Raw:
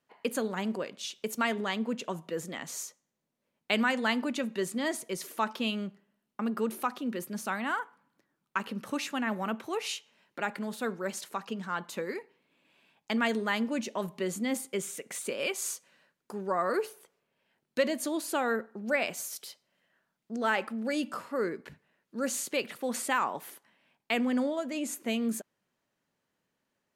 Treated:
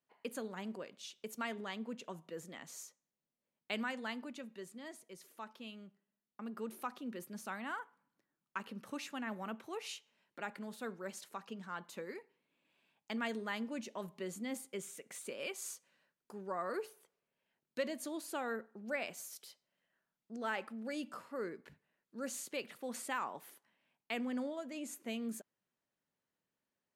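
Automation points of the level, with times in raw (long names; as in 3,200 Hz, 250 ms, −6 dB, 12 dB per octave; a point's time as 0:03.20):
0:03.74 −11 dB
0:04.80 −18 dB
0:05.84 −18 dB
0:06.88 −10 dB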